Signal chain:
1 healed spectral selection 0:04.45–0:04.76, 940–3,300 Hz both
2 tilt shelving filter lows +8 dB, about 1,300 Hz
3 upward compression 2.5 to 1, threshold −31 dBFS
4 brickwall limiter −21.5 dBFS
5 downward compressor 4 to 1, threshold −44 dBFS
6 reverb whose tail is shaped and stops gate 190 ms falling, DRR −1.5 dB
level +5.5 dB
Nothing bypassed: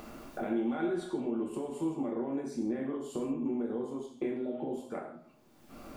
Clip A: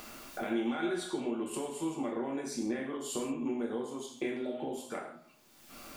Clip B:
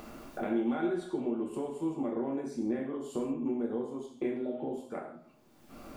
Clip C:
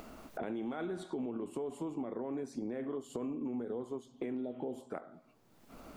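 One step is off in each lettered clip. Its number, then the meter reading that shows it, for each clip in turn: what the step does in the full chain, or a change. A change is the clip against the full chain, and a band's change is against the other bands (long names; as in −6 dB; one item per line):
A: 2, 8 kHz band +12.5 dB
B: 4, average gain reduction 2.0 dB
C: 6, change in integrated loudness −5.0 LU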